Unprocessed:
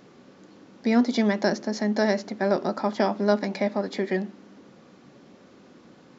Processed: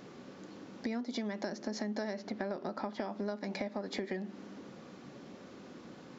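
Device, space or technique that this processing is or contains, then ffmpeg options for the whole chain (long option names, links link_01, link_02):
serial compression, peaks first: -filter_complex "[0:a]asettb=1/sr,asplit=3[link_01][link_02][link_03];[link_01]atrim=end=2.134[link_04];[link_02]atrim=start=2.13:end=3.08,asetpts=PTS-STARTPTS,afade=type=in:duration=0.004:curve=qsin,afade=type=out:start_time=0.946:duration=0.004:curve=qsin,lowpass=5300[link_05];[link_03]atrim=start=3.076[link_06];[link_04][link_05]acrossfade=duration=0.004:curve1=hsin:curve2=qsin[link_07];[link_07][link_06]acrossfade=duration=0.004:curve1=qsin:curve2=hsin,acompressor=threshold=-31dB:ratio=6,acompressor=threshold=-37dB:ratio=2,volume=1dB"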